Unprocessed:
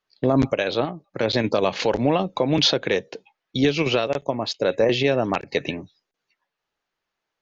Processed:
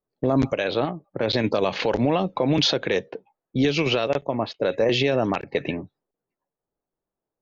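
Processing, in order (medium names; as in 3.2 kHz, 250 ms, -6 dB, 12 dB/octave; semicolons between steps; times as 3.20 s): level-controlled noise filter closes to 540 Hz, open at -15 dBFS; peak limiter -13.5 dBFS, peak gain reduction 6 dB; trim +2 dB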